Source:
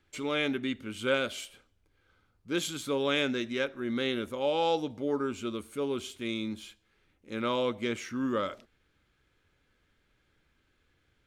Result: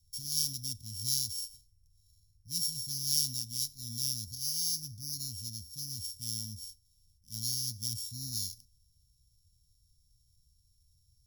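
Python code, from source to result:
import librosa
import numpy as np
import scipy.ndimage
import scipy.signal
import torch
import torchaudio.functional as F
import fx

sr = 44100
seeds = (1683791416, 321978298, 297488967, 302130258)

y = np.r_[np.sort(x[:len(x) // 8 * 8].reshape(-1, 8), axis=1).ravel(), x[len(x) // 8 * 8:]]
y = scipy.signal.sosfilt(scipy.signal.cheby2(4, 70, [420.0, 1600.0], 'bandstop', fs=sr, output='sos'), y)
y = fx.small_body(y, sr, hz=(480.0, 1200.0), ring_ms=25, db=16)
y = y * librosa.db_to_amplitude(5.5)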